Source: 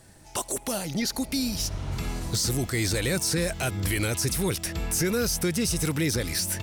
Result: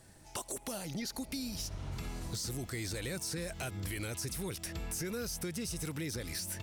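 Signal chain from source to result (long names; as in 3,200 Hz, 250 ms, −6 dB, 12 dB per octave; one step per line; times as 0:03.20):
downward compressor 3 to 1, threshold −32 dBFS, peak gain reduction 8 dB
level −5.5 dB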